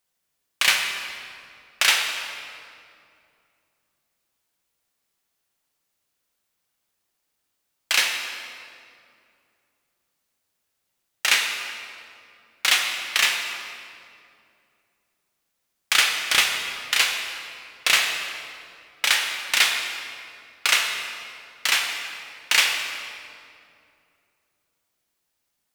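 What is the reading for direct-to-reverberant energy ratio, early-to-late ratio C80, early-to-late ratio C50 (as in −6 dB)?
2.0 dB, 5.0 dB, 3.5 dB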